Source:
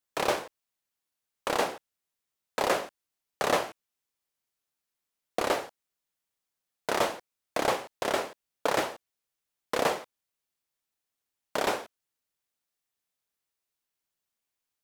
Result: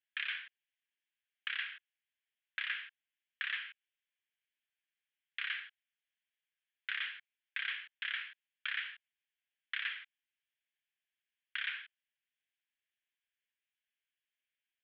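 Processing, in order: elliptic band-pass 1600–3300 Hz, stop band 50 dB; compressor, threshold -36 dBFS, peak gain reduction 7 dB; gain +2.5 dB

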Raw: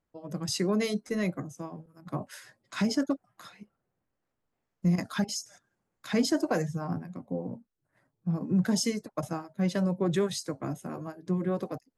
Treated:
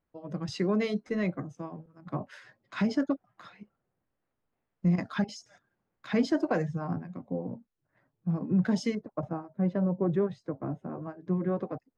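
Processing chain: LPF 3200 Hz 12 dB/oct, from 8.95 s 1100 Hz, from 11.03 s 1900 Hz

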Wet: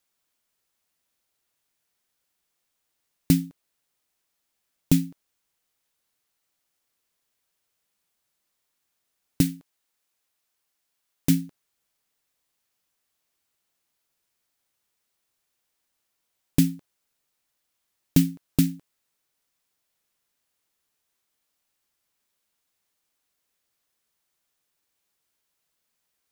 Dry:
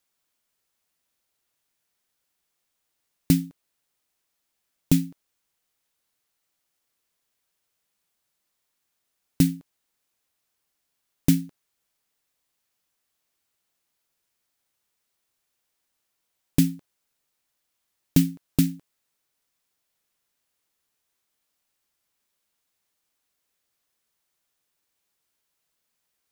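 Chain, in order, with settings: 9.41–11.3 low shelf 370 Hz -6 dB

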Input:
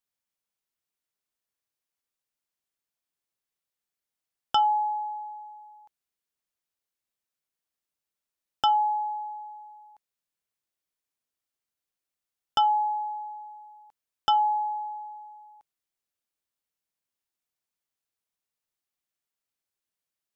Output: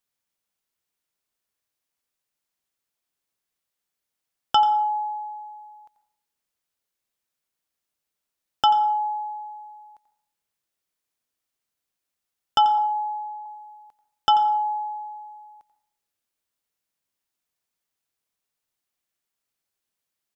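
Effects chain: 12.78–13.46 LPF 2800 Hz 24 dB/oct; echo 87 ms -14 dB; reverb RT60 0.60 s, pre-delay 98 ms, DRR 15.5 dB; gain +4.5 dB

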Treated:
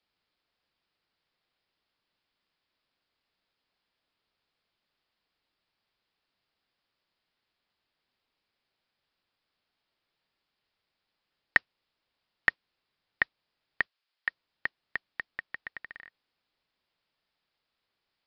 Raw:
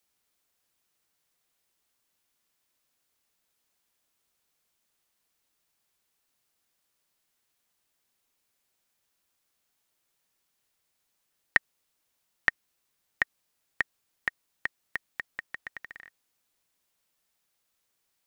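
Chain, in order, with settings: 13.81–14.28 HPF 1400 Hz 6 dB/oct; modulation noise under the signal 30 dB; downsampling 11025 Hz

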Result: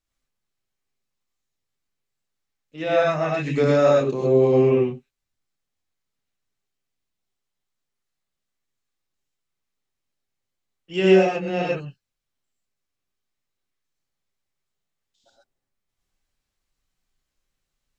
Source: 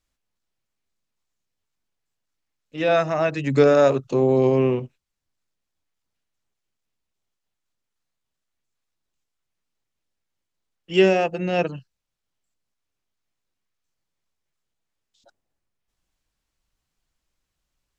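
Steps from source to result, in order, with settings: non-linear reverb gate 0.15 s rising, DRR -4 dB; gain -6 dB

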